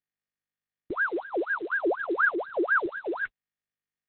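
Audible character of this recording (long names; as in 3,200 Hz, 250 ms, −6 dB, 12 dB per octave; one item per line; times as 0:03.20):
sample-and-hold tremolo
phaser sweep stages 4, 1.7 Hz, lowest notch 700–1,400 Hz
a quantiser's noise floor 10 bits, dither none
Opus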